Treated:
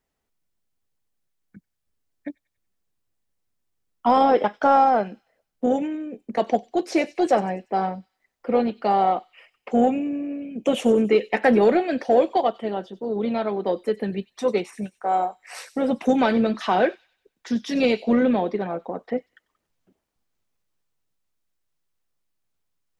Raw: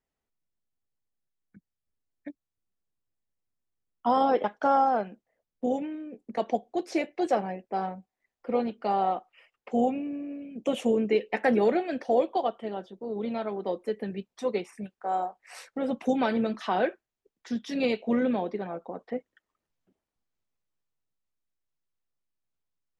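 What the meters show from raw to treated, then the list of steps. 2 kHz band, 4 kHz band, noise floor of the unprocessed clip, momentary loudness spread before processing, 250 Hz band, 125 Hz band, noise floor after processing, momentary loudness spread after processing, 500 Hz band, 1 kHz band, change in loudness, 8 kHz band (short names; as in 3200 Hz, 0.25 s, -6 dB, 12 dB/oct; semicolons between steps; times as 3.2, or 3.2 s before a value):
+6.5 dB, +7.0 dB, under -85 dBFS, 13 LU, +6.5 dB, +7.0 dB, -79 dBFS, 12 LU, +6.5 dB, +6.5 dB, +6.5 dB, n/a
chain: in parallel at -8 dB: soft clip -24 dBFS, distortion -10 dB; on the sum: thin delay 94 ms, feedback 43%, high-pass 4500 Hz, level -11.5 dB; gain +4.5 dB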